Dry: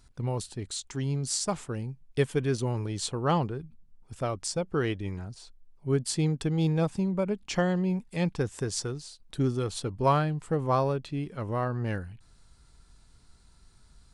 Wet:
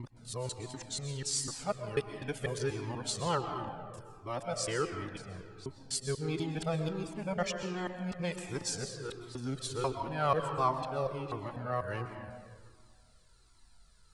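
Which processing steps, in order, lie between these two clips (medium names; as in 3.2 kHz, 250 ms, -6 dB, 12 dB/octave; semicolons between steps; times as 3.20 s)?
time reversed locally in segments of 246 ms; bass shelf 320 Hz -9 dB; algorithmic reverb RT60 1.9 s, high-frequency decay 0.55×, pre-delay 85 ms, DRR 5.5 dB; Shepard-style flanger falling 1.4 Hz; trim +1.5 dB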